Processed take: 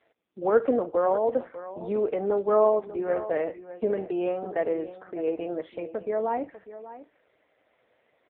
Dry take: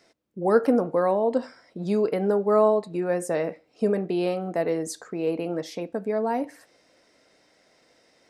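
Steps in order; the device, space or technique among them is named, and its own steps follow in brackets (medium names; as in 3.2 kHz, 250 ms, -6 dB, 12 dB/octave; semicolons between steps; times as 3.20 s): satellite phone (band-pass 320–3000 Hz; delay 597 ms -14.5 dB; AMR-NB 5.15 kbps 8 kHz)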